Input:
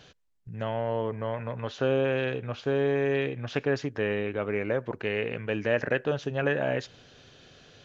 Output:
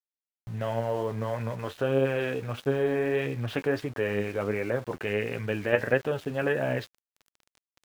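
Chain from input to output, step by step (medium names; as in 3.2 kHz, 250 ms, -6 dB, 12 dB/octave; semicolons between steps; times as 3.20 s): low-pass 3.4 kHz 12 dB/octave; in parallel at +2.5 dB: level held to a coarse grid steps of 23 dB; on the sum: flange 1.5 Hz, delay 7 ms, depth 4.9 ms, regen +46%; small samples zeroed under -46.5 dBFS; trim +2.5 dB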